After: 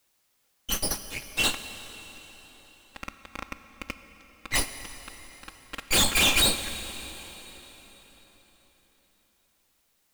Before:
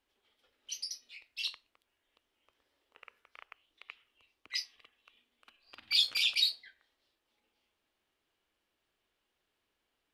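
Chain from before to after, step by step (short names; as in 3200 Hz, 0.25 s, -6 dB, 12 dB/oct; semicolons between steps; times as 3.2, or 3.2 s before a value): minimum comb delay 3.7 ms; bell 5000 Hz -12.5 dB 0.55 oct; sample leveller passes 5; requantised 12-bit, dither triangular; plate-style reverb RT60 4.5 s, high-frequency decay 0.85×, DRR 9.5 dB; gain +1 dB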